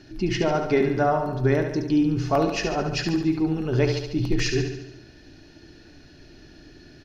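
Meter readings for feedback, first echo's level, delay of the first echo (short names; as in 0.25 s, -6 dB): 57%, -6.5 dB, 71 ms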